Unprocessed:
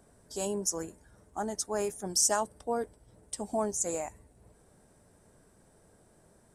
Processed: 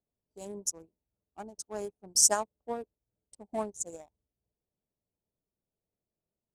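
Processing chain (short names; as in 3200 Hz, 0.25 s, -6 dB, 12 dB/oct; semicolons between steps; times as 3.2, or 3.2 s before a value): Wiener smoothing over 25 samples; upward expander 2.5:1, over -47 dBFS; gain +6 dB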